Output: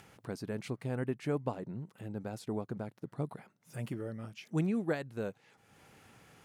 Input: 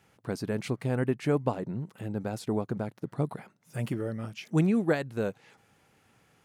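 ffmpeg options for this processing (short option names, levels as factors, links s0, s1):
-af "acompressor=mode=upward:threshold=0.01:ratio=2.5,volume=0.447"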